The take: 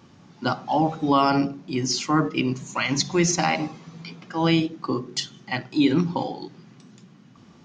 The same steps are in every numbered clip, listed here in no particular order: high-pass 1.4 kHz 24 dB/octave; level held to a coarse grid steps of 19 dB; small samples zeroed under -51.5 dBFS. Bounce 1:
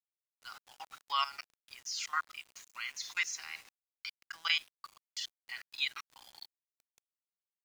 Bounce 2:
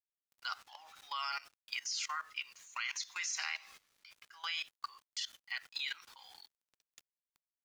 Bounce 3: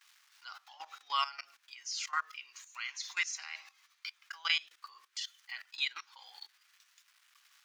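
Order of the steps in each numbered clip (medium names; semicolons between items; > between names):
level held to a coarse grid > high-pass > small samples zeroed; high-pass > small samples zeroed > level held to a coarse grid; small samples zeroed > level held to a coarse grid > high-pass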